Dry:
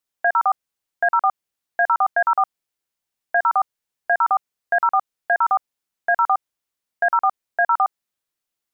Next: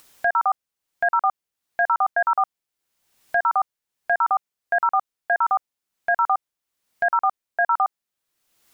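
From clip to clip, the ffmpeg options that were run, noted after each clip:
-af "acompressor=mode=upward:threshold=0.0355:ratio=2.5,volume=0.794"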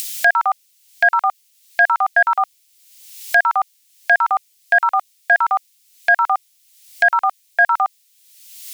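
-af "equalizer=f=200:t=o:w=1.6:g=-14.5,aexciter=amount=8.9:drive=4.6:freq=2000,volume=1.78"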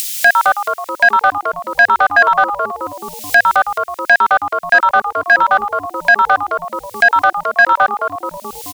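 -filter_complex "[0:a]asplit=8[s0][s1][s2][s3][s4][s5][s6][s7];[s1]adelay=215,afreqshift=-120,volume=0.355[s8];[s2]adelay=430,afreqshift=-240,volume=0.2[s9];[s3]adelay=645,afreqshift=-360,volume=0.111[s10];[s4]adelay=860,afreqshift=-480,volume=0.0624[s11];[s5]adelay=1075,afreqshift=-600,volume=0.0351[s12];[s6]adelay=1290,afreqshift=-720,volume=0.0195[s13];[s7]adelay=1505,afreqshift=-840,volume=0.011[s14];[s0][s8][s9][s10][s11][s12][s13][s14]amix=inputs=8:normalize=0,acontrast=44"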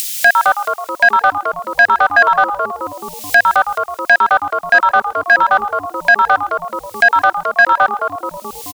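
-af "aecho=1:1:132:0.0668"

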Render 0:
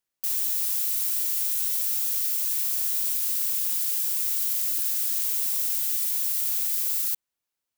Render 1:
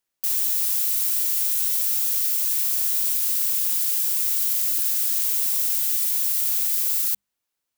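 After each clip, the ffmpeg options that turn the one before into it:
-af "bandreject=f=50:t=h:w=6,bandreject=f=100:t=h:w=6,bandreject=f=150:t=h:w=6,bandreject=f=200:t=h:w=6,volume=1.5"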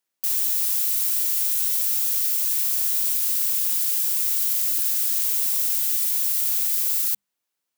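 -af "highpass=130"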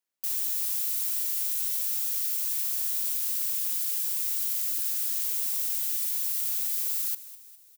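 -af "aecho=1:1:204|408|612|816|1020:0.15|0.0778|0.0405|0.021|0.0109,volume=0.473"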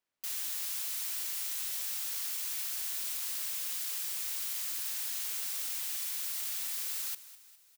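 -af "lowpass=f=3000:p=1,volume=1.68"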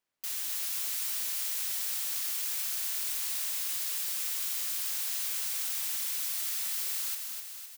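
-af "aecho=1:1:255|510|765|1020|1275|1530|1785:0.531|0.297|0.166|0.0932|0.0522|0.0292|0.0164,volume=1.19"

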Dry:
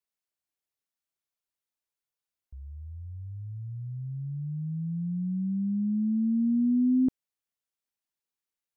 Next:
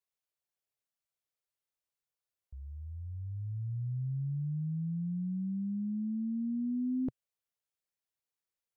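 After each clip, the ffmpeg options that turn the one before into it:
-af "equalizer=f=125:t=o:w=1:g=6,equalizer=f=250:t=o:w=1:g=-8,equalizer=f=500:t=o:w=1:g=5,volume=0.668"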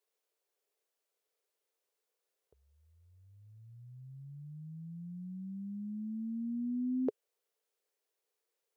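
-af "highpass=f=430:t=q:w=4.9,volume=1.68"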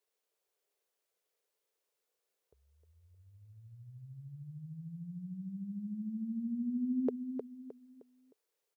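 -af "aecho=1:1:309|618|927|1236:0.447|0.156|0.0547|0.0192"

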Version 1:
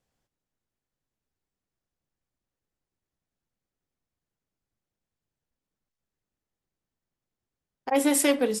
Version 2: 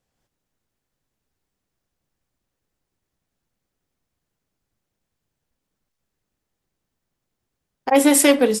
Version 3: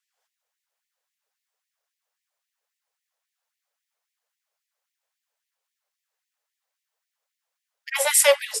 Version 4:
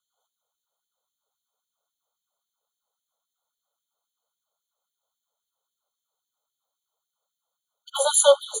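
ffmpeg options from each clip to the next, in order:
-af "dynaudnorm=f=150:g=3:m=2.11,volume=1.26"
-af "afftfilt=real='re*gte(b*sr/1024,420*pow(1800/420,0.5+0.5*sin(2*PI*3.7*pts/sr)))':imag='im*gte(b*sr/1024,420*pow(1800/420,0.5+0.5*sin(2*PI*3.7*pts/sr)))':win_size=1024:overlap=0.75"
-af "afftfilt=real='re*eq(mod(floor(b*sr/1024/1500),2),0)':imag='im*eq(mod(floor(b*sr/1024/1500),2),0)':win_size=1024:overlap=0.75,volume=1.33"

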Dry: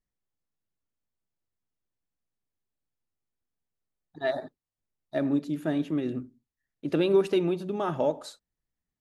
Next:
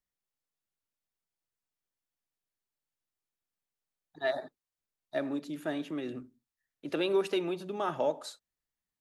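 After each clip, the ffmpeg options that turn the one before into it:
-filter_complex "[0:a]lowshelf=f=400:g=-10,acrossover=split=260|1800[s0][s1][s2];[s0]alimiter=level_in=6.31:limit=0.0631:level=0:latency=1,volume=0.158[s3];[s3][s1][s2]amix=inputs=3:normalize=0"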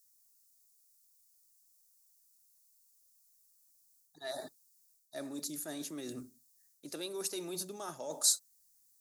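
-af "areverse,acompressor=threshold=0.00891:ratio=4,areverse,aexciter=amount=11.9:drive=6.2:freq=4500"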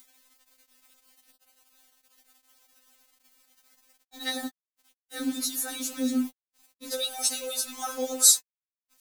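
-filter_complex "[0:a]asplit=2[s0][s1];[s1]acompressor=mode=upward:threshold=0.00398:ratio=2.5,volume=0.794[s2];[s0][s2]amix=inputs=2:normalize=0,acrusher=bits=7:mix=0:aa=0.000001,afftfilt=real='re*3.46*eq(mod(b,12),0)':imag='im*3.46*eq(mod(b,12),0)':win_size=2048:overlap=0.75,volume=2.82"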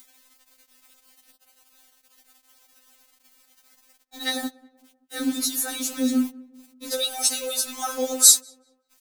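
-filter_complex "[0:a]asplit=2[s0][s1];[s1]adelay=192,lowpass=f=1400:p=1,volume=0.0794,asplit=2[s2][s3];[s3]adelay=192,lowpass=f=1400:p=1,volume=0.49,asplit=2[s4][s5];[s5]adelay=192,lowpass=f=1400:p=1,volume=0.49[s6];[s0][s2][s4][s6]amix=inputs=4:normalize=0,volume=1.68"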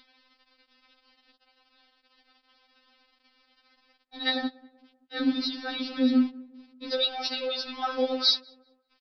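-af "aresample=11025,aresample=44100"

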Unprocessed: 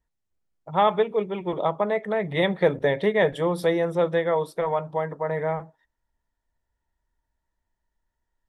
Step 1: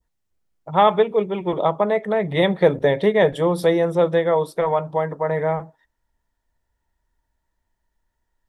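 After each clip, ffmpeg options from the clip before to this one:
-af "adynamicequalizer=threshold=0.01:dfrequency=1900:dqfactor=1:tfrequency=1900:tqfactor=1:attack=5:release=100:ratio=0.375:range=2:mode=cutabove:tftype=bell,volume=1.78"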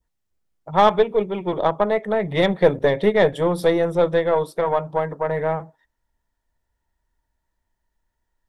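-af "aeval=exprs='0.668*(cos(1*acos(clip(val(0)/0.668,-1,1)))-cos(1*PI/2))+0.0473*(cos(4*acos(clip(val(0)/0.668,-1,1)))-cos(4*PI/2))+0.0133*(cos(7*acos(clip(val(0)/0.668,-1,1)))-cos(7*PI/2))':c=same"

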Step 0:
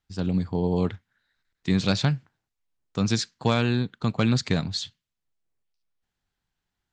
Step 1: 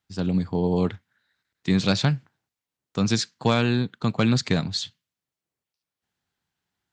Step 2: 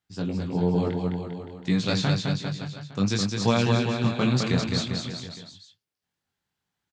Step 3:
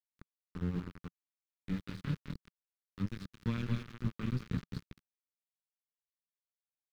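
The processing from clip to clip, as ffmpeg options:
-af "highpass=96,volume=1.26"
-af "flanger=delay=17:depth=6.5:speed=0.57,aecho=1:1:210|399|569.1|722.2|860:0.631|0.398|0.251|0.158|0.1"
-af "aeval=exprs='0.422*(cos(1*acos(clip(val(0)/0.422,-1,1)))-cos(1*PI/2))+0.0596*(cos(3*acos(clip(val(0)/0.422,-1,1)))-cos(3*PI/2))+0.00596*(cos(7*acos(clip(val(0)/0.422,-1,1)))-cos(7*PI/2))':c=same,aeval=exprs='val(0)*gte(abs(val(0)),0.0596)':c=same,firequalizer=gain_entry='entry(170,0);entry(690,-26);entry(1200,-11);entry(8300,-26)':delay=0.05:min_phase=1,volume=0.708"

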